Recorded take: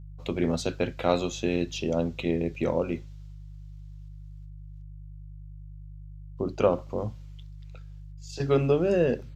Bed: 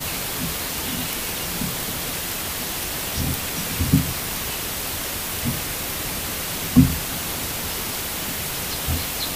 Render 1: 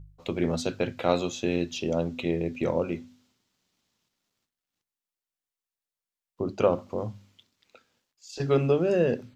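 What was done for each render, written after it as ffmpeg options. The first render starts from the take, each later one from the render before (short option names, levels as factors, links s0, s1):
-af "bandreject=f=50:t=h:w=4,bandreject=f=100:t=h:w=4,bandreject=f=150:t=h:w=4,bandreject=f=200:t=h:w=4,bandreject=f=250:t=h:w=4"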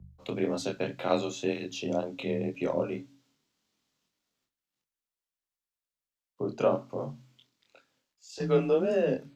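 -af "afreqshift=27,flanger=delay=22.5:depth=4.3:speed=1.9"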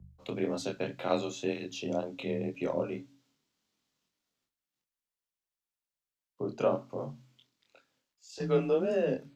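-af "volume=0.75"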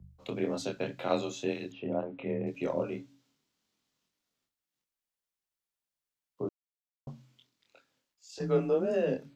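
-filter_complex "[0:a]asettb=1/sr,asplit=3[s0][s1][s2];[s0]atrim=end=1.724[s3];[s1]atrim=start=1.72:end=2.47,asetpts=PTS-STARTPTS,afade=t=in:d=0.004:c=qsin,afade=t=out:st=0.746:d=0.004:c=qsin,lowpass=f=2300:w=0.5412,lowpass=f=2300:w=1.3066[s4];[s2]atrim=start=2.466[s5];[s3][s4]acrossfade=d=0.004:c1=hsin:c2=qsin[s6];[s6][s5]acrossfade=d=0.004:c1=qsin:c2=hsin,asettb=1/sr,asplit=3[s7][s8][s9];[s7]atrim=end=8.394[s10];[s8]atrim=start=8.39:end=8.94,asetpts=PTS-STARTPTS,afade=t=in:d=0.004:c=qsin,afade=t=out:st=0.546:d=0.004:c=qsin,equalizer=f=3100:t=o:w=1.1:g=-7[s11];[s9]atrim=start=8.936[s12];[s10][s11]acrossfade=d=0.004:c1=hsin:c2=qsin[s13];[s13][s12]acrossfade=d=0.004:c1=qsin:c2=hsin,asplit=3[s14][s15][s16];[s14]atrim=end=6.49,asetpts=PTS-STARTPTS,afade=t=out:st=6.486:d=0.004:c=hsin[s17];[s15]atrim=start=6.49:end=7.07,asetpts=PTS-STARTPTS,volume=0[s18];[s16]atrim=start=7.07,asetpts=PTS-STARTPTS,afade=t=in:d=0.004:c=hsin[s19];[s17][s18][s19]concat=n=3:v=0:a=1"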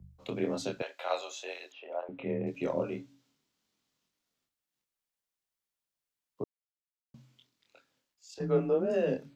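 -filter_complex "[0:a]asettb=1/sr,asplit=3[s0][s1][s2];[s0]atrim=end=0.824[s3];[s1]atrim=start=0.82:end=2.09,asetpts=PTS-STARTPTS,afade=t=in:d=0.004:c=qsin,afade=t=out:st=1.266:d=0.004:c=qsin,highpass=f=570:w=0.5412,highpass=f=570:w=1.3066[s4];[s2]atrim=start=2.086[s5];[s3][s4]acrossfade=d=0.004:c1=hsin:c2=qsin[s6];[s6][s5]acrossfade=d=0.004:c1=qsin:c2=hsin,asettb=1/sr,asplit=3[s7][s8][s9];[s7]atrim=end=8.344[s10];[s8]atrim=start=8.34:end=8.9,asetpts=PTS-STARTPTS,afade=t=in:d=0.004:c=qsin,afade=t=out:st=0.556:d=0.004:c=qsin,equalizer=f=7000:w=0.51:g=-9.5[s11];[s9]atrim=start=8.896[s12];[s10][s11]acrossfade=d=0.004:c1=hsin:c2=qsin[s13];[s13][s12]acrossfade=d=0.004:c1=qsin:c2=hsin,asplit=3[s14][s15][s16];[s14]atrim=end=6.44,asetpts=PTS-STARTPTS,afade=t=out:st=6.436:d=0.004:c=hsin[s17];[s15]atrim=start=6.44:end=7.14,asetpts=PTS-STARTPTS,volume=0[s18];[s16]atrim=start=7.14,asetpts=PTS-STARTPTS,afade=t=in:d=0.004:c=hsin[s19];[s17][s18][s19]concat=n=3:v=0:a=1"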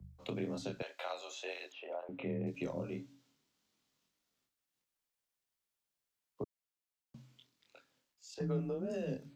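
-filter_complex "[0:a]acrossover=split=200|4000[s0][s1][s2];[s1]acompressor=threshold=0.0126:ratio=10[s3];[s2]alimiter=level_in=10:limit=0.0631:level=0:latency=1:release=215,volume=0.1[s4];[s0][s3][s4]amix=inputs=3:normalize=0"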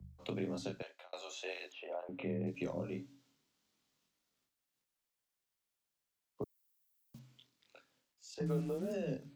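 -filter_complex "[0:a]asettb=1/sr,asplit=3[s0][s1][s2];[s0]atrim=end=6.424[s3];[s1]atrim=start=6.42:end=7.19,asetpts=PTS-STARTPTS,afade=t=in:d=0.004:c=qsin,afade=t=out:st=0.766:d=0.004:c=qsin,aemphasis=mode=production:type=50fm[s4];[s2]atrim=start=7.186[s5];[s3][s4]acrossfade=d=0.004:c1=hsin:c2=qsin[s6];[s6][s5]acrossfade=d=0.004:c1=qsin:c2=hsin,asettb=1/sr,asplit=3[s7][s8][s9];[s7]atrim=end=8.464[s10];[s8]atrim=start=8.46:end=8.93,asetpts=PTS-STARTPTS,afade=t=in:d=0.004:c=qsin,afade=t=out:st=0.466:d=0.004:c=qsin,acrusher=bits=8:mix=0:aa=0.5[s11];[s9]atrim=start=8.926[s12];[s10][s11]acrossfade=d=0.004:c1=hsin:c2=qsin[s13];[s13][s12]acrossfade=d=0.004:c1=qsin:c2=hsin,asplit=2[s14][s15];[s14]atrim=end=1.13,asetpts=PTS-STARTPTS,afade=t=out:st=0.66:d=0.47[s16];[s15]atrim=start=1.13,asetpts=PTS-STARTPTS,afade=t=in:d=0.004:c=hsin[s17];[s16][s17]concat=n=2:v=0:a=1"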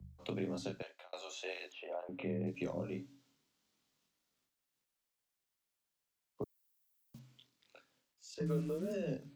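-filter_complex "[0:a]asettb=1/sr,asplit=3[s0][s1][s2];[s0]atrim=end=8.274[s3];[s1]atrim=start=8.27:end=9.05,asetpts=PTS-STARTPTS,afade=t=in:d=0.004:c=qsin,afade=t=out:st=0.776:d=0.004:c=qsin,asuperstop=centerf=780:order=4:qfactor=3.4[s4];[s2]atrim=start=9.046[s5];[s3][s4]acrossfade=d=0.004:c1=hsin:c2=qsin[s6];[s6][s5]acrossfade=d=0.004:c1=qsin:c2=hsin"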